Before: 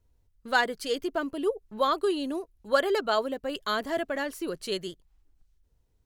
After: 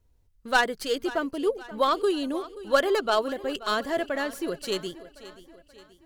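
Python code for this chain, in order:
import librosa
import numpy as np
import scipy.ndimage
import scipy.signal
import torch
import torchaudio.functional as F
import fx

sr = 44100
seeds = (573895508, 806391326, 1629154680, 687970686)

p1 = fx.tracing_dist(x, sr, depth_ms=0.05)
p2 = p1 + fx.echo_feedback(p1, sr, ms=530, feedback_pct=49, wet_db=-17.0, dry=0)
y = p2 * 10.0 ** (2.0 / 20.0)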